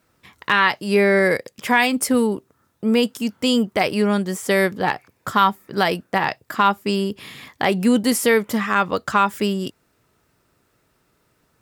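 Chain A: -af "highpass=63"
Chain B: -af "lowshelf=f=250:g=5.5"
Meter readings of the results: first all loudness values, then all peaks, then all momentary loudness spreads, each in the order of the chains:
-20.0 LUFS, -18.5 LUFS; -3.0 dBFS, -3.5 dBFS; 8 LU, 9 LU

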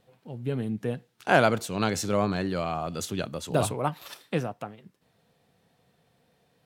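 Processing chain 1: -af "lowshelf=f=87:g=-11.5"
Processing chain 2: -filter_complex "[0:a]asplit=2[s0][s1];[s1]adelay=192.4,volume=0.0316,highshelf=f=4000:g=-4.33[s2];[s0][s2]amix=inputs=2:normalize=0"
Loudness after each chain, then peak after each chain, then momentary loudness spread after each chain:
-29.0 LUFS, -28.0 LUFS; -5.0 dBFS, -5.0 dBFS; 15 LU, 14 LU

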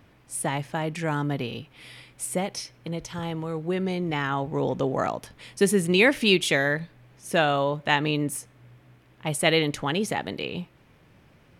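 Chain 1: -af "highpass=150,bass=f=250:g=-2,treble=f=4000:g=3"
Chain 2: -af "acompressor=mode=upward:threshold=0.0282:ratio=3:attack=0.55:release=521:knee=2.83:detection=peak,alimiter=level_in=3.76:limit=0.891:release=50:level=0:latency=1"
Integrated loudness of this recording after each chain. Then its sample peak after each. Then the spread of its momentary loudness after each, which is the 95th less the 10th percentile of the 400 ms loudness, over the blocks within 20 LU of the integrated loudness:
-26.0 LUFS, -15.5 LUFS; -5.0 dBFS, -1.0 dBFS; 15 LU, 19 LU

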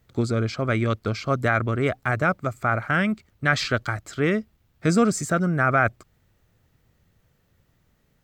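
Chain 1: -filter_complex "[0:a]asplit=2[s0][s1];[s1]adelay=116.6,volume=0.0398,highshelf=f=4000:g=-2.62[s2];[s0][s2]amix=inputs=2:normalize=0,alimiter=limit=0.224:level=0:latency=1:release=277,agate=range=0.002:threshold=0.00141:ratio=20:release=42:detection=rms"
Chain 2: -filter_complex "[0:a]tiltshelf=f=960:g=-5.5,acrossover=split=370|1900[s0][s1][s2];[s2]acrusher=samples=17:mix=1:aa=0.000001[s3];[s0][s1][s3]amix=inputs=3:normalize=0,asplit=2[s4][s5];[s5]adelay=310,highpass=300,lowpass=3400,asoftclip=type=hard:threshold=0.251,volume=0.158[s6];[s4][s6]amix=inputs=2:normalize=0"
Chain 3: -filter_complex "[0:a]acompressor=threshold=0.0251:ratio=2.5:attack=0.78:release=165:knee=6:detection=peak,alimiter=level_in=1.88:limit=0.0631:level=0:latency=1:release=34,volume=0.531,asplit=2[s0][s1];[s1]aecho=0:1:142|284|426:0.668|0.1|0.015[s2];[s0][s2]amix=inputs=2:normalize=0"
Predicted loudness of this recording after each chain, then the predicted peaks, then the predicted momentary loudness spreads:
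-26.0 LUFS, -25.5 LUFS, -37.0 LUFS; -13.0 dBFS, -4.0 dBFS, -25.0 dBFS; 5 LU, 8 LU, 5 LU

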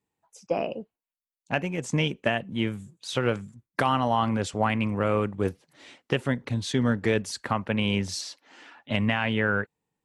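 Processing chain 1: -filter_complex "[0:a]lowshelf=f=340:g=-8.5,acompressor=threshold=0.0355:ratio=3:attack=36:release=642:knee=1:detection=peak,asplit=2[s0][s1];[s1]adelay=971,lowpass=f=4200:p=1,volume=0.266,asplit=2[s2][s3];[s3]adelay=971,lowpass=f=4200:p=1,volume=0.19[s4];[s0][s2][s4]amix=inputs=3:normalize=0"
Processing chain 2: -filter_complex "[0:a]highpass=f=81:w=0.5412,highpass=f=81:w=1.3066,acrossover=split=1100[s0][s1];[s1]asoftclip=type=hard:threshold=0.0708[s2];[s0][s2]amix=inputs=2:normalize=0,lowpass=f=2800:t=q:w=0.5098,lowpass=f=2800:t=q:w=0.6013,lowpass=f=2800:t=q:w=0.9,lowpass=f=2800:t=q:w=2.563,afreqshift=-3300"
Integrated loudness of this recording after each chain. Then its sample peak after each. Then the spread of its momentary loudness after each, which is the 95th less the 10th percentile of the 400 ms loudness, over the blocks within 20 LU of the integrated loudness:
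-33.5 LUFS, -24.5 LUFS; -9.5 dBFS, -10.5 dBFS; 10 LU, 9 LU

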